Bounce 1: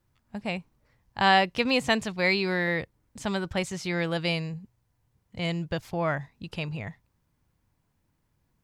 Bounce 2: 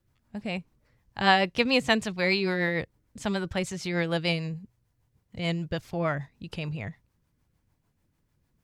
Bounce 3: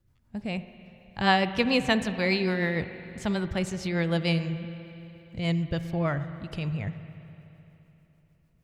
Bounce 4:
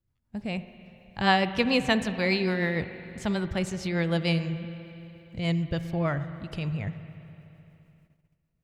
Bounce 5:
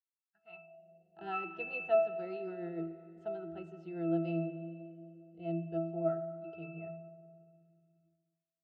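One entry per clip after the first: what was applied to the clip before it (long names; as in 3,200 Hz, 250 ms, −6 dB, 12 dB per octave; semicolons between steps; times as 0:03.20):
rotating-speaker cabinet horn 6.7 Hz; level +2 dB
low-shelf EQ 210 Hz +7.5 dB; spring reverb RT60 3.3 s, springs 42/59 ms, chirp 45 ms, DRR 11 dB; level −2 dB
noise gate −60 dBFS, range −11 dB
resonances in every octave E, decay 0.53 s; high-pass filter sweep 1,700 Hz → 460 Hz, 0:00.27–0:01.00; noise reduction from a noise print of the clip's start 9 dB; level +8.5 dB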